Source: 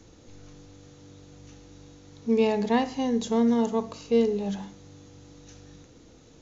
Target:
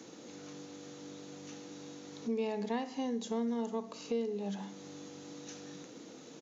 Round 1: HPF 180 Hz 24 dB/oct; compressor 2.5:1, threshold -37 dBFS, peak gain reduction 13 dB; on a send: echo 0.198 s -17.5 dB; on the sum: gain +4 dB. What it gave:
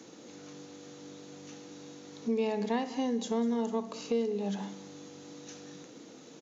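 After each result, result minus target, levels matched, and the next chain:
echo-to-direct +12 dB; compressor: peak gain reduction -4 dB
HPF 180 Hz 24 dB/oct; compressor 2.5:1, threshold -37 dBFS, peak gain reduction 13 dB; on a send: echo 0.198 s -29.5 dB; on the sum: gain +4 dB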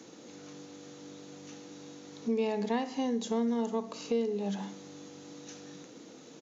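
compressor: peak gain reduction -4 dB
HPF 180 Hz 24 dB/oct; compressor 2.5:1, threshold -44 dBFS, peak gain reduction 17.5 dB; on a send: echo 0.198 s -29.5 dB; on the sum: gain +4 dB

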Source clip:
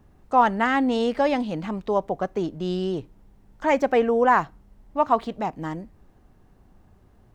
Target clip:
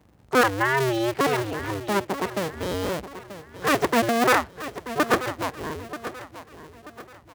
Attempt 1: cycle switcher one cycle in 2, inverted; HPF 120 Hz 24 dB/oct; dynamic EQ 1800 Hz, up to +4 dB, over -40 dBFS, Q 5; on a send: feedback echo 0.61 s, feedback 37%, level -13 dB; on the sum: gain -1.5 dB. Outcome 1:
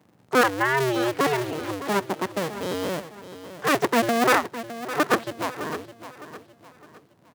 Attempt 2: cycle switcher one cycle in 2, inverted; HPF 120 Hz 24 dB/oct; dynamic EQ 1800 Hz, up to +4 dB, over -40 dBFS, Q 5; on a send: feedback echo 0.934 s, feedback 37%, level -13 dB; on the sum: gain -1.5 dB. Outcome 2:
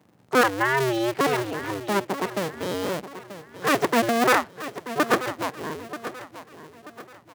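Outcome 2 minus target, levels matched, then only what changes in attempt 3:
125 Hz band -2.5 dB
change: HPF 53 Hz 24 dB/oct

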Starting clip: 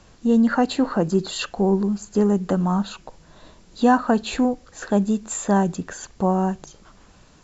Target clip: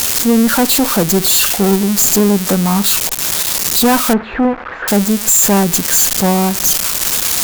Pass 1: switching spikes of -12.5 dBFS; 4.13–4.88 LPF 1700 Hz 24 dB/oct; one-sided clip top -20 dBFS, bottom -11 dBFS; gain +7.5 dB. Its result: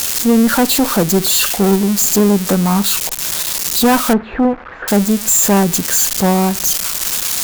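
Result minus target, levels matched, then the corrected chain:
switching spikes: distortion -6 dB
switching spikes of -6 dBFS; 4.13–4.88 LPF 1700 Hz 24 dB/oct; one-sided clip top -20 dBFS, bottom -11 dBFS; gain +7.5 dB

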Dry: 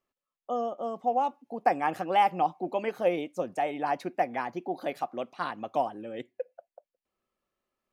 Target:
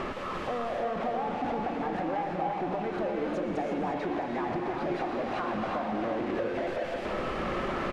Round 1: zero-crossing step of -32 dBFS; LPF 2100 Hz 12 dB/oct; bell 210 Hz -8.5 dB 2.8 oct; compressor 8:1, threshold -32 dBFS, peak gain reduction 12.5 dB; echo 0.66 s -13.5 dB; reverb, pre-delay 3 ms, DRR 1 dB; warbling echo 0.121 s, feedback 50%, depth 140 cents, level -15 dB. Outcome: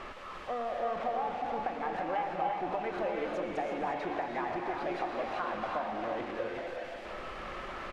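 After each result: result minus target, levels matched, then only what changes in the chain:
250 Hz band -5.0 dB; zero-crossing step: distortion -6 dB
change: bell 210 Hz +2 dB 2.8 oct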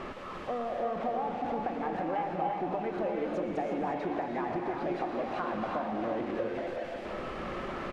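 zero-crossing step: distortion -6 dB
change: zero-crossing step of -24 dBFS

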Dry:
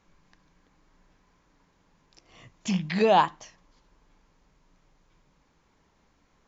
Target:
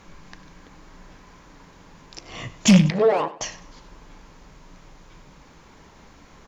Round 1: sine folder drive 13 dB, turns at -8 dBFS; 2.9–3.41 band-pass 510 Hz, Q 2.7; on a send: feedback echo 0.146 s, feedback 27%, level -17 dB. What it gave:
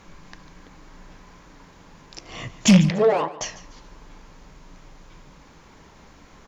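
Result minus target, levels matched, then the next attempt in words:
echo 48 ms late
sine folder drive 13 dB, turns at -8 dBFS; 2.9–3.41 band-pass 510 Hz, Q 2.7; on a send: feedback echo 98 ms, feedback 27%, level -17 dB

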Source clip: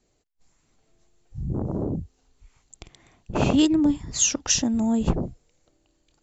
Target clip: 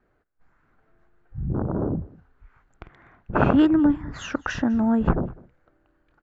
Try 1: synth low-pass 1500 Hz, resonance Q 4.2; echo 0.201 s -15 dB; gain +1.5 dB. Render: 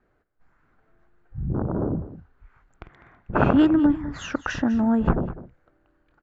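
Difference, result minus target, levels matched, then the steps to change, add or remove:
echo-to-direct +8 dB
change: echo 0.201 s -23 dB

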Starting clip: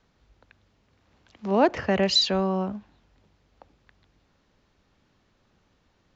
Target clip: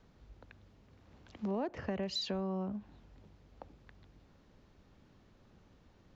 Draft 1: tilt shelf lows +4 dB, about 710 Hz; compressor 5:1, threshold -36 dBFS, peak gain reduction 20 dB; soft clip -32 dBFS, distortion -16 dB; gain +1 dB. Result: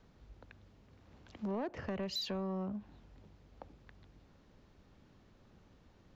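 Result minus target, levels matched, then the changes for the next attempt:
soft clip: distortion +12 dB
change: soft clip -23.5 dBFS, distortion -28 dB

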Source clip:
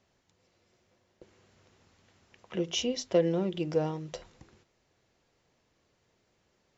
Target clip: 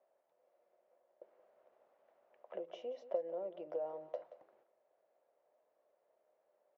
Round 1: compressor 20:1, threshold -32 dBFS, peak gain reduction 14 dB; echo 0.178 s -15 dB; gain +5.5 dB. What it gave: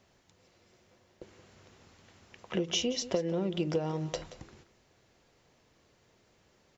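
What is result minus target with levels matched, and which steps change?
500 Hz band -4.0 dB
add after compressor: ladder band-pass 650 Hz, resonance 70%

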